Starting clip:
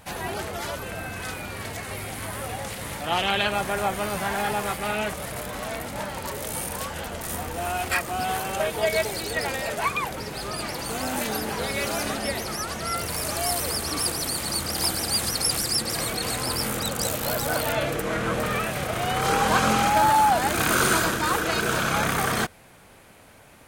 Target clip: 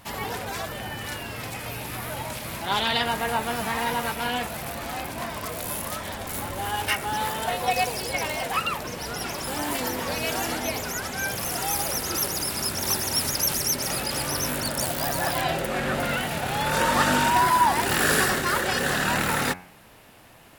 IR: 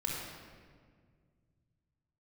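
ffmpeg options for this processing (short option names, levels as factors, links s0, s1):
-af "asetrate=50715,aresample=44100,bandreject=f=90.54:t=h:w=4,bandreject=f=181.08:t=h:w=4,bandreject=f=271.62:t=h:w=4,bandreject=f=362.16:t=h:w=4,bandreject=f=452.7:t=h:w=4,bandreject=f=543.24:t=h:w=4,bandreject=f=633.78:t=h:w=4,bandreject=f=724.32:t=h:w=4,bandreject=f=814.86:t=h:w=4,bandreject=f=905.4:t=h:w=4,bandreject=f=995.94:t=h:w=4,bandreject=f=1086.48:t=h:w=4,bandreject=f=1177.02:t=h:w=4,bandreject=f=1267.56:t=h:w=4,bandreject=f=1358.1:t=h:w=4,bandreject=f=1448.64:t=h:w=4,bandreject=f=1539.18:t=h:w=4,bandreject=f=1629.72:t=h:w=4,bandreject=f=1720.26:t=h:w=4,bandreject=f=1810.8:t=h:w=4,bandreject=f=1901.34:t=h:w=4,bandreject=f=1991.88:t=h:w=4,bandreject=f=2082.42:t=h:w=4,bandreject=f=2172.96:t=h:w=4,bandreject=f=2263.5:t=h:w=4,bandreject=f=2354.04:t=h:w=4,bandreject=f=2444.58:t=h:w=4,bandreject=f=2535.12:t=h:w=4,bandreject=f=2625.66:t=h:w=4,bandreject=f=2716.2:t=h:w=4"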